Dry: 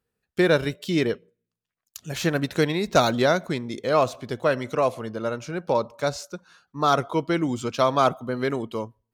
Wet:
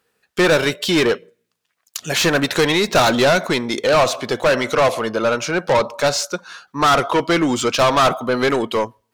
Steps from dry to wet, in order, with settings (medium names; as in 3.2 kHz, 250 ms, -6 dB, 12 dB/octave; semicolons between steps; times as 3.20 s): overdrive pedal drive 24 dB, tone 7.7 kHz, clips at -7 dBFS